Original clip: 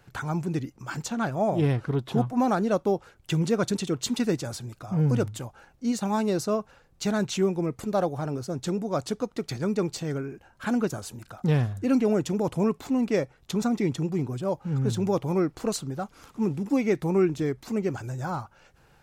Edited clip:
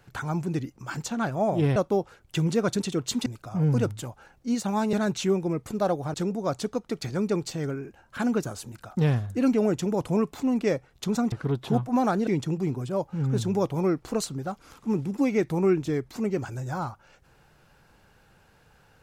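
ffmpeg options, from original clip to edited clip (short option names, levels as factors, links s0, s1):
-filter_complex "[0:a]asplit=7[s0][s1][s2][s3][s4][s5][s6];[s0]atrim=end=1.762[s7];[s1]atrim=start=2.708:end=4.212[s8];[s2]atrim=start=4.628:end=6.302[s9];[s3]atrim=start=7.058:end=8.272[s10];[s4]atrim=start=8.608:end=13.792[s11];[s5]atrim=start=1.758:end=2.712[s12];[s6]atrim=start=13.788[s13];[s7][s8]acrossfade=d=0.004:c1=hsin:c2=hsin[s14];[s14][s9]acrossfade=d=0.004:c1=hsin:c2=hsin[s15];[s15][s10]acrossfade=d=0.004:c1=hsin:c2=hsin[s16];[s16][s11]acrossfade=d=0.004:c1=hsin:c2=hsin[s17];[s17][s12]acrossfade=d=0.004:c1=hsin:c2=hsin[s18];[s18][s13]acrossfade=d=0.004:c1=hsin:c2=hsin"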